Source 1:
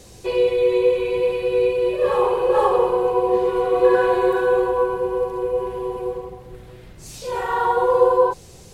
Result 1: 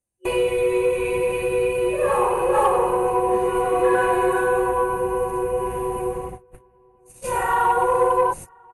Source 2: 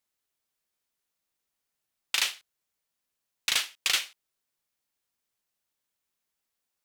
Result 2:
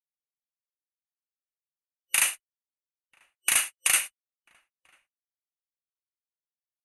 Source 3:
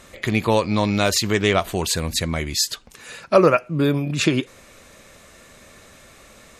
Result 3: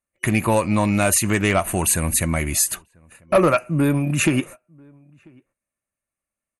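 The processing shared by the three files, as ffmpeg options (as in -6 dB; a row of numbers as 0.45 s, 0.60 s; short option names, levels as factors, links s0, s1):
-filter_complex "[0:a]agate=range=0.00398:threshold=0.02:ratio=16:detection=peak,superequalizer=7b=0.501:13b=0.282:14b=0.282:16b=3.98,asplit=2[s0][s1];[s1]acompressor=threshold=0.0501:ratio=10,volume=0.891[s2];[s0][s2]amix=inputs=2:normalize=0,asoftclip=type=tanh:threshold=0.422,asplit=2[s3][s4];[s4]adelay=991.3,volume=0.0355,highshelf=f=4000:g=-22.3[s5];[s3][s5]amix=inputs=2:normalize=0" -ar 32000 -c:a ac3 -b:a 64k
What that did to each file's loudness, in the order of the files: -1.5 LU, +3.5 LU, +1.0 LU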